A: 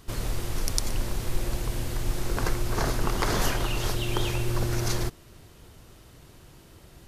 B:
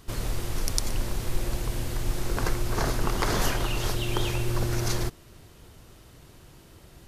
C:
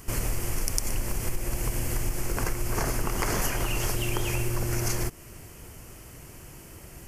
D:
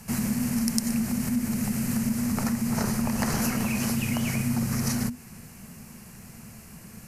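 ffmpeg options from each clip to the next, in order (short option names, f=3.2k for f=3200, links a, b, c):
-af anull
-af "acompressor=threshold=-28dB:ratio=6,aexciter=amount=1.1:drive=3.4:freq=2k,volume=4.5dB"
-af "afreqshift=-250"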